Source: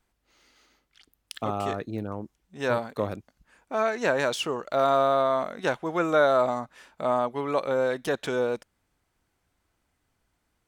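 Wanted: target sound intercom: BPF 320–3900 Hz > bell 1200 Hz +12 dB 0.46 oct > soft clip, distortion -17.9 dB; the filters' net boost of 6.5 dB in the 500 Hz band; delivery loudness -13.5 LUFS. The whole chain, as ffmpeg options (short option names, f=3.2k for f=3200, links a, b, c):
-af "highpass=320,lowpass=3.9k,equalizer=f=500:t=o:g=8,equalizer=f=1.2k:t=o:w=0.46:g=12,asoftclip=threshold=-8.5dB,volume=7.5dB"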